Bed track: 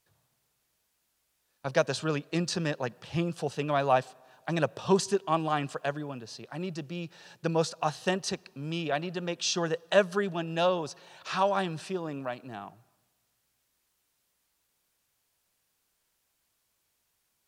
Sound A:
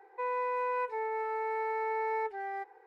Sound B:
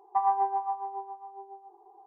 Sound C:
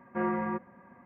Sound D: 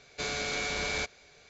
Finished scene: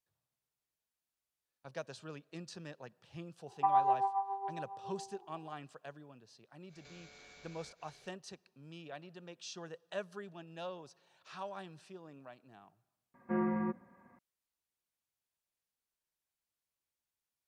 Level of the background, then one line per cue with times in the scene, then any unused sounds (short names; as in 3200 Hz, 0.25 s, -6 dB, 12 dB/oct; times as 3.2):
bed track -17.5 dB
3.48 add B -3 dB
6.67 add D -6.5 dB, fades 0.10 s + compressor 4:1, threshold -52 dBFS
13.14 add C -8 dB + dynamic EQ 210 Hz, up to +8 dB, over -45 dBFS, Q 0.72
not used: A